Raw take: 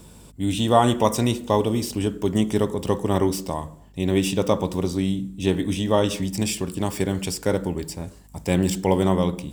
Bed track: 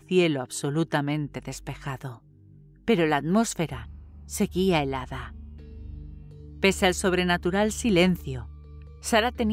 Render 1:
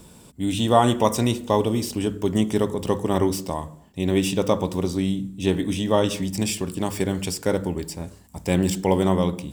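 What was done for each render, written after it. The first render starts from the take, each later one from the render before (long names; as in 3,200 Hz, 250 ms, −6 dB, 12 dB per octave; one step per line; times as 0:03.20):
hum removal 50 Hz, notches 3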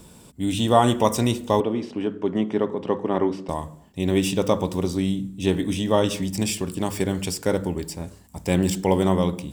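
0:01.60–0:03.49: band-pass filter 200–2,300 Hz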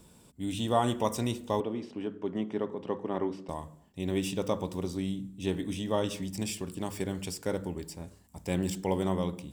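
level −9.5 dB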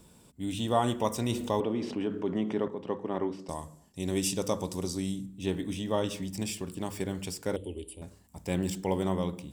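0:01.29–0:02.68: envelope flattener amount 50%
0:03.39–0:05.26: flat-topped bell 7,400 Hz +10 dB
0:07.56–0:08.02: drawn EQ curve 100 Hz 0 dB, 150 Hz −20 dB, 250 Hz −3 dB, 440 Hz +1 dB, 780 Hz −12 dB, 1,600 Hz −25 dB, 3,000 Hz +10 dB, 5,700 Hz −25 dB, 10,000 Hz +10 dB, 14,000 Hz −29 dB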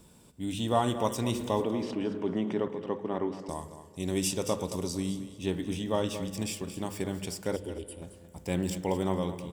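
repeating echo 222 ms, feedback 23%, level −12.5 dB
spring reverb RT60 3.4 s, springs 35 ms, chirp 65 ms, DRR 17.5 dB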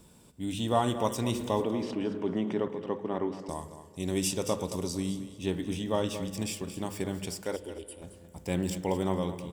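0:07.44–0:08.04: parametric band 130 Hz −10.5 dB 1.8 octaves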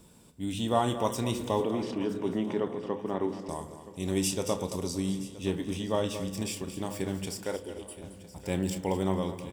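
double-tracking delay 31 ms −12 dB
repeating echo 971 ms, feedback 39%, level −17.5 dB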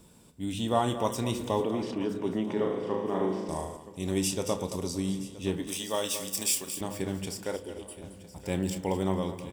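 0:02.53–0:03.77: flutter between parallel walls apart 6.4 metres, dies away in 0.68 s
0:05.67–0:06.81: RIAA equalisation recording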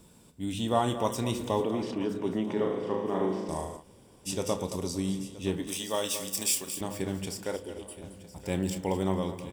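0:03.82–0:04.28: fill with room tone, crossfade 0.06 s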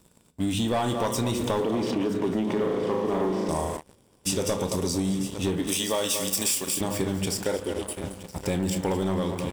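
leveller curve on the samples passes 3
downward compressor, threshold −23 dBFS, peak gain reduction 8 dB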